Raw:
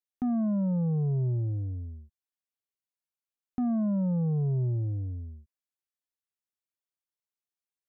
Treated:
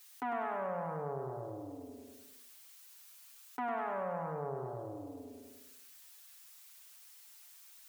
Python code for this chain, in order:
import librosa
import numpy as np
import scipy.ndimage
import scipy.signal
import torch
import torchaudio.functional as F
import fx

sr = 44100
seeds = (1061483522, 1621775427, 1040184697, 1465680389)

y = fx.self_delay(x, sr, depth_ms=0.16)
y = scipy.signal.sosfilt(scipy.signal.butter(2, 750.0, 'highpass', fs=sr, output='sos'), y)
y = fx.tilt_eq(y, sr, slope=2.0)
y = y + 0.94 * np.pad(y, (int(7.1 * sr / 1000.0), 0))[:len(y)]
y = fx.echo_feedback(y, sr, ms=101, feedback_pct=46, wet_db=-5)
y = fx.env_flatten(y, sr, amount_pct=50)
y = F.gain(torch.from_numpy(y), 4.0).numpy()